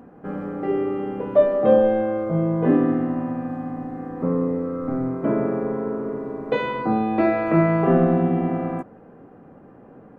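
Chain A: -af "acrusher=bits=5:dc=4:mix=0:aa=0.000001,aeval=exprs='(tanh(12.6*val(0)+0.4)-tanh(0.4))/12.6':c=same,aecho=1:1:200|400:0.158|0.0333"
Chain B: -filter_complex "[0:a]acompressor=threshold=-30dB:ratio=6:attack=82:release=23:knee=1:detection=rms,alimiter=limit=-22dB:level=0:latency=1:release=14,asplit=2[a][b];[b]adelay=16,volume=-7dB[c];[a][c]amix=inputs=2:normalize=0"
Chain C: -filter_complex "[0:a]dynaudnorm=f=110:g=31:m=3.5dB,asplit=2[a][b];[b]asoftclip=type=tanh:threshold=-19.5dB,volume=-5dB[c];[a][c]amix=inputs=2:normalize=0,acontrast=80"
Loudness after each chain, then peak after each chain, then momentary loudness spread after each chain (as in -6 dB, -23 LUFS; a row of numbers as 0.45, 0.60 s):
-27.0, -29.5, -12.5 LUFS; -17.5, -19.0, -1.0 dBFS; 10, 8, 9 LU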